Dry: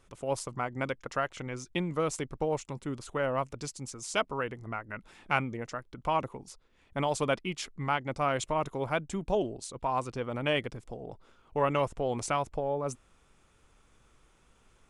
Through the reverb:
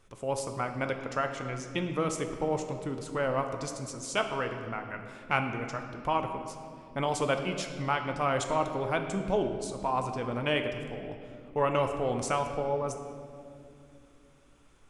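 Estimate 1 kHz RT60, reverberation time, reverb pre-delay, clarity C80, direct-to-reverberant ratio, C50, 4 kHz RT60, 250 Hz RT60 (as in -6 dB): 2.0 s, 2.5 s, 9 ms, 8.0 dB, 5.0 dB, 7.0 dB, 1.6 s, 3.8 s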